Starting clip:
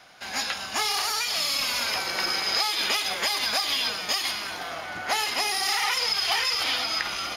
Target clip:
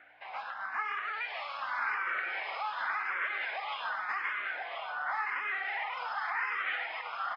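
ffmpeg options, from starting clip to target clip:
-filter_complex "[0:a]lowpass=f=1800:w=0.5412,lowpass=f=1800:w=1.3066,alimiter=level_in=1.06:limit=0.0631:level=0:latency=1:release=104,volume=0.944,asplit=2[s0][s1];[s1]aecho=0:1:1029:0.501[s2];[s0][s2]amix=inputs=2:normalize=0,aeval=exprs='val(0)+0.00708*(sin(2*PI*60*n/s)+sin(2*PI*2*60*n/s)/2+sin(2*PI*3*60*n/s)/3+sin(2*PI*4*60*n/s)/4+sin(2*PI*5*60*n/s)/5)':c=same,highpass=1200,asplit=2[s3][s4];[s4]afreqshift=0.89[s5];[s3][s5]amix=inputs=2:normalize=1,volume=1.88"

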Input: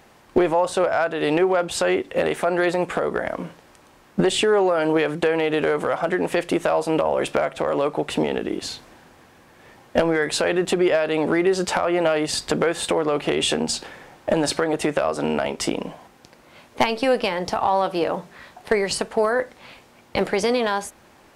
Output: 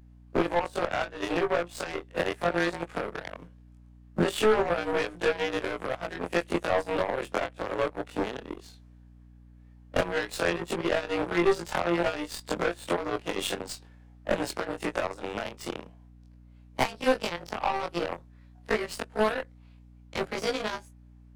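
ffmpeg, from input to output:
-filter_complex "[0:a]afftfilt=real='re':imag='-im':win_size=2048:overlap=0.75,aeval=exprs='0.316*(cos(1*acos(clip(val(0)/0.316,-1,1)))-cos(1*PI/2))+0.0126*(cos(3*acos(clip(val(0)/0.316,-1,1)))-cos(3*PI/2))+0.00562*(cos(4*acos(clip(val(0)/0.316,-1,1)))-cos(4*PI/2))+0.0355*(cos(7*acos(clip(val(0)/0.316,-1,1)))-cos(7*PI/2))+0.00447*(cos(8*acos(clip(val(0)/0.316,-1,1)))-cos(8*PI/2))':c=same,acrossover=split=200|1000[s0][s1][s2];[s1]aeval=exprs='clip(val(0),-1,0.0794)':c=same[s3];[s0][s3][s2]amix=inputs=3:normalize=0,aeval=exprs='val(0)+0.00282*(sin(2*PI*60*n/s)+sin(2*PI*2*60*n/s)/2+sin(2*PI*3*60*n/s)/3+sin(2*PI*4*60*n/s)/4+sin(2*PI*5*60*n/s)/5)':c=same"

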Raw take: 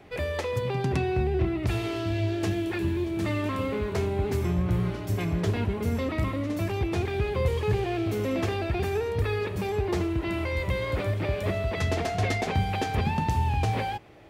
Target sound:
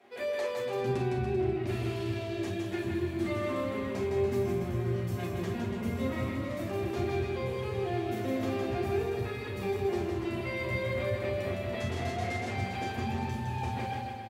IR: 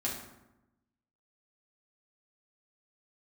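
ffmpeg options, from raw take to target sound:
-filter_complex "[0:a]asetnsamples=n=441:p=0,asendcmd='0.82 highpass f 100',highpass=350,alimiter=limit=0.0944:level=0:latency=1:release=493,aecho=1:1:160|288|390.4|472.3|537.9:0.631|0.398|0.251|0.158|0.1[s0];[1:a]atrim=start_sample=2205,atrim=end_sample=3087[s1];[s0][s1]afir=irnorm=-1:irlink=0,volume=0.398"

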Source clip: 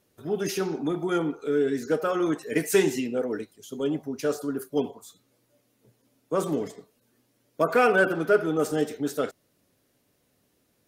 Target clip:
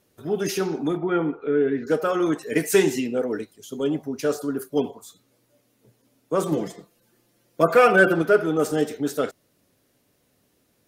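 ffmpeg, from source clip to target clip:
-filter_complex "[0:a]asettb=1/sr,asplit=3[s0][s1][s2];[s0]atrim=end=0.974[s3];[s1]atrim=start=0.97:end=1.87,asetpts=PTS-STARTPTS,afade=t=in:d=0.004:c=qsin,afade=t=out:st=0.896:d=0.004:c=qsin,lowpass=f=2700:w=0.5412,lowpass=f=2700:w=1.3066[s4];[s2]atrim=start=1.866[s5];[s3][s4]acrossfade=d=0.004:c1=hsin:c2=qsin[s6];[s6][s5]acrossfade=d=0.004:c1=qsin:c2=hsin,asettb=1/sr,asplit=3[s7][s8][s9];[s7]atrim=end=6.514[s10];[s8]atrim=start=6.51:end=8.22,asetpts=PTS-STARTPTS,afade=t=in:d=0.004:c=qsin,afade=t=out:st=1.706:d=0.004:c=qsin,aecho=1:1:5.8:0.72,atrim=end_sample=75411[s11];[s9]atrim=start=8.216[s12];[s10][s11]acrossfade=d=0.004:c1=hsin:c2=qsin[s13];[s13][s12]acrossfade=d=0.004:c1=qsin:c2=hsin,volume=1.41"

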